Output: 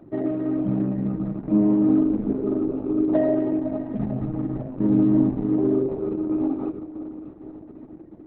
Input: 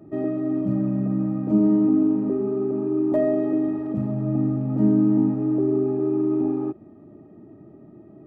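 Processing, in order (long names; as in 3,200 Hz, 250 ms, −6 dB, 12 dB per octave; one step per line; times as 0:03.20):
0:00.49–0:01.26: upward compression, threshold −29 dBFS
0:02.21–0:02.99: double-tracking delay 19 ms −9.5 dB
feedback delay with all-pass diffusion 546 ms, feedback 46%, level −11 dB
0:04.31–0:04.90: dynamic equaliser 160 Hz, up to −4 dB, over −29 dBFS, Q 1.1
Opus 6 kbit/s 48,000 Hz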